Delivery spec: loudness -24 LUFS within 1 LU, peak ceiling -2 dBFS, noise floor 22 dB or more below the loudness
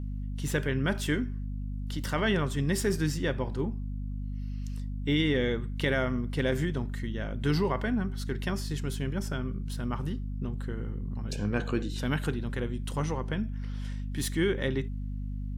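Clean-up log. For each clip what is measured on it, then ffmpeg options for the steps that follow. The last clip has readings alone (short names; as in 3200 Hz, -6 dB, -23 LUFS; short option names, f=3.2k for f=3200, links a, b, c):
hum 50 Hz; harmonics up to 250 Hz; hum level -32 dBFS; loudness -31.5 LUFS; peak -15.5 dBFS; loudness target -24.0 LUFS
-> -af "bandreject=f=50:t=h:w=6,bandreject=f=100:t=h:w=6,bandreject=f=150:t=h:w=6,bandreject=f=200:t=h:w=6,bandreject=f=250:t=h:w=6"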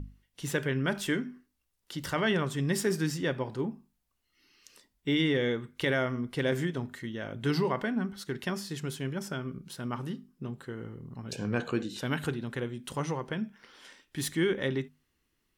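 hum none; loudness -32.5 LUFS; peak -16.0 dBFS; loudness target -24.0 LUFS
-> -af "volume=8.5dB"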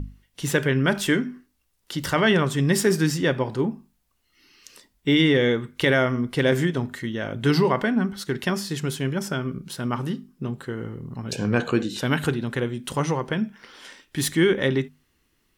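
loudness -24.0 LUFS; peak -7.5 dBFS; noise floor -69 dBFS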